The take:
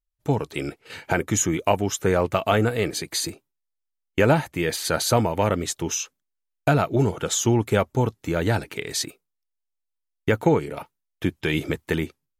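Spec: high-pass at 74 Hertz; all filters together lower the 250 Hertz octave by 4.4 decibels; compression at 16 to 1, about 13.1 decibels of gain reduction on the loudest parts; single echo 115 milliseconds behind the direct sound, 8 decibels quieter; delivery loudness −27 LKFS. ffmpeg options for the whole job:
ffmpeg -i in.wav -af "highpass=74,equalizer=frequency=250:width_type=o:gain=-6.5,acompressor=threshold=-28dB:ratio=16,aecho=1:1:115:0.398,volume=6.5dB" out.wav

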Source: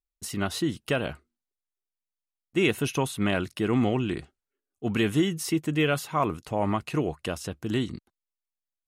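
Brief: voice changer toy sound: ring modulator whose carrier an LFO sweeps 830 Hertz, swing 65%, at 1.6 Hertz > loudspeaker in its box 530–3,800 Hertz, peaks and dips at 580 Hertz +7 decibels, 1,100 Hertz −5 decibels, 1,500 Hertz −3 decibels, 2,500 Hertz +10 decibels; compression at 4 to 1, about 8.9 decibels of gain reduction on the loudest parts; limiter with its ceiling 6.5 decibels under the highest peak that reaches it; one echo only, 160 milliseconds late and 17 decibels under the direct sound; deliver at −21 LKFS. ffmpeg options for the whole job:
ffmpeg -i in.wav -af "acompressor=threshold=-30dB:ratio=4,alimiter=level_in=1.5dB:limit=-24dB:level=0:latency=1,volume=-1.5dB,aecho=1:1:160:0.141,aeval=exprs='val(0)*sin(2*PI*830*n/s+830*0.65/1.6*sin(2*PI*1.6*n/s))':channel_layout=same,highpass=530,equalizer=frequency=580:width_type=q:width=4:gain=7,equalizer=frequency=1100:width_type=q:width=4:gain=-5,equalizer=frequency=1500:width_type=q:width=4:gain=-3,equalizer=frequency=2500:width_type=q:width=4:gain=10,lowpass=frequency=3800:width=0.5412,lowpass=frequency=3800:width=1.3066,volume=19dB" out.wav

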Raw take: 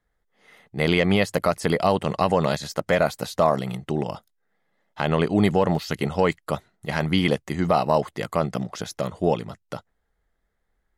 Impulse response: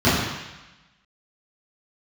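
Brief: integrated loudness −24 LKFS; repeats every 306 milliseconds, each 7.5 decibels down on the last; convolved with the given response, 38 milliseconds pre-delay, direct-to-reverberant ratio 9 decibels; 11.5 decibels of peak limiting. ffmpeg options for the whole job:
-filter_complex "[0:a]alimiter=limit=-18.5dB:level=0:latency=1,aecho=1:1:306|612|918|1224|1530:0.422|0.177|0.0744|0.0312|0.0131,asplit=2[link_01][link_02];[1:a]atrim=start_sample=2205,adelay=38[link_03];[link_02][link_03]afir=irnorm=-1:irlink=0,volume=-31.5dB[link_04];[link_01][link_04]amix=inputs=2:normalize=0,volume=5dB"

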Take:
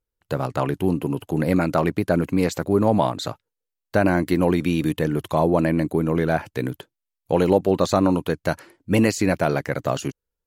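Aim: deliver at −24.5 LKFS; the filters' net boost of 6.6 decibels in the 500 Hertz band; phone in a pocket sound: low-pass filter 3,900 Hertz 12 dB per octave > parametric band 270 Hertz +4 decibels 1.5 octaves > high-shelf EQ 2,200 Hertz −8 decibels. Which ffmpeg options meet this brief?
ffmpeg -i in.wav -af "lowpass=3900,equalizer=frequency=270:width_type=o:width=1.5:gain=4,equalizer=frequency=500:width_type=o:gain=6.5,highshelf=frequency=2200:gain=-8,volume=-7.5dB" out.wav

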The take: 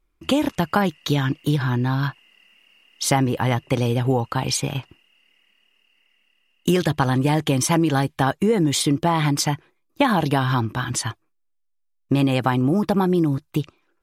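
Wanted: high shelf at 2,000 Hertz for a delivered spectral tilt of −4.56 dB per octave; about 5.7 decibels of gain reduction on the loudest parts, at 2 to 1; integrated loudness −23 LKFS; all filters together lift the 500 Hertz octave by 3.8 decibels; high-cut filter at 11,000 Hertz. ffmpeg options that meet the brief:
ffmpeg -i in.wav -af "lowpass=11000,equalizer=frequency=500:width_type=o:gain=4.5,highshelf=frequency=2000:gain=5.5,acompressor=threshold=-21dB:ratio=2,volume=0.5dB" out.wav

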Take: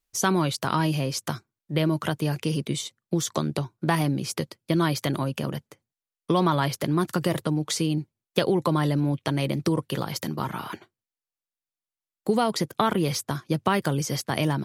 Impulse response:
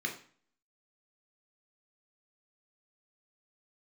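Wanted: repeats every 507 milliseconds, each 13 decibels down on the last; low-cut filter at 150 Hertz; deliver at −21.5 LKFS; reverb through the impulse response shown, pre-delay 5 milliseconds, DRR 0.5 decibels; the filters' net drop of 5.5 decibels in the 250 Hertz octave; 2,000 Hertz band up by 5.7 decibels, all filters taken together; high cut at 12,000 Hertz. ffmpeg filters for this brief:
-filter_complex "[0:a]highpass=150,lowpass=12000,equalizer=frequency=250:width_type=o:gain=-7.5,equalizer=frequency=2000:width_type=o:gain=7.5,aecho=1:1:507|1014|1521:0.224|0.0493|0.0108,asplit=2[link_01][link_02];[1:a]atrim=start_sample=2205,adelay=5[link_03];[link_02][link_03]afir=irnorm=-1:irlink=0,volume=-5dB[link_04];[link_01][link_04]amix=inputs=2:normalize=0,volume=3dB"

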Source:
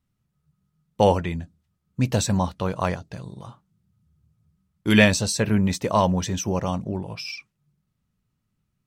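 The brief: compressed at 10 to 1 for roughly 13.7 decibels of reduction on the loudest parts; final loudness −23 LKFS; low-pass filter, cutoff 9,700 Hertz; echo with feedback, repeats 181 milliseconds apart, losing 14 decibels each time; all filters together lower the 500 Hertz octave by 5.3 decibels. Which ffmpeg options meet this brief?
ffmpeg -i in.wav -af "lowpass=9700,equalizer=frequency=500:width_type=o:gain=-6.5,acompressor=threshold=-26dB:ratio=10,aecho=1:1:181|362:0.2|0.0399,volume=9dB" out.wav

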